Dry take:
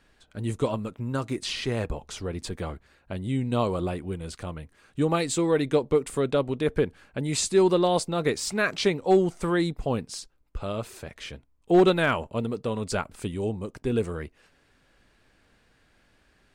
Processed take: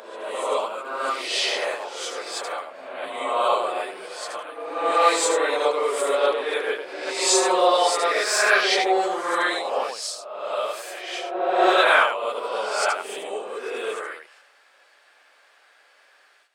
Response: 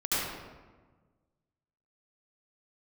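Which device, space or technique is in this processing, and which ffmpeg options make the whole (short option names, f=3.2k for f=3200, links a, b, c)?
ghost voice: -filter_complex "[0:a]areverse[a];[1:a]atrim=start_sample=2205[b];[a][b]afir=irnorm=-1:irlink=0,areverse,highpass=f=580:w=0.5412,highpass=f=580:w=1.3066"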